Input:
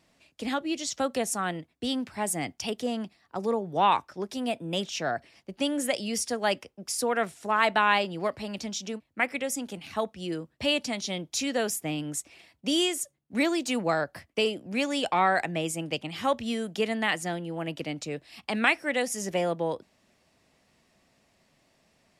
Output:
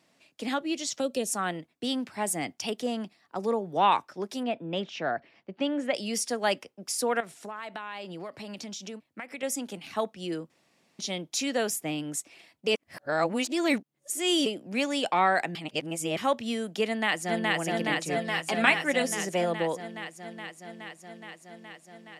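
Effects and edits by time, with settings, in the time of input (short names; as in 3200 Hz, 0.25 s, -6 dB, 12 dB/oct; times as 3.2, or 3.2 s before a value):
1.01–1.29 spectral gain 660–2400 Hz -12 dB
4.43–5.95 LPF 2800 Hz
7.2–9.43 compressor, threshold -35 dBFS
10.5–10.99 room tone
12.67–14.46 reverse
15.55–16.17 reverse
16.86–17.55 echo throw 0.42 s, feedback 80%, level -0.5 dB
18.05–19.12 comb 7.4 ms, depth 57%
whole clip: HPF 160 Hz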